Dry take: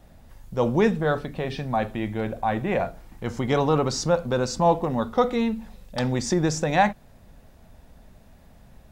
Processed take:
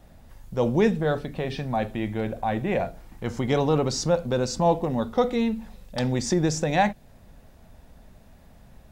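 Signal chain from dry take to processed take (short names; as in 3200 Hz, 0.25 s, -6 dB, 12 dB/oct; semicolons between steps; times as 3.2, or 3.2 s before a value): dynamic EQ 1200 Hz, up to -6 dB, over -39 dBFS, Q 1.5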